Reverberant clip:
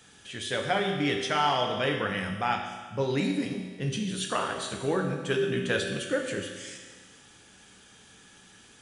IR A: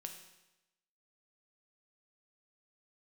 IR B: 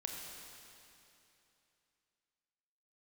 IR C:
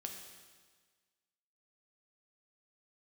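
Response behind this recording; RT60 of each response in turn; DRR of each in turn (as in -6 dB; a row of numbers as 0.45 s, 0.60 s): C; 0.95 s, 2.9 s, 1.5 s; 3.5 dB, 0.0 dB, 2.5 dB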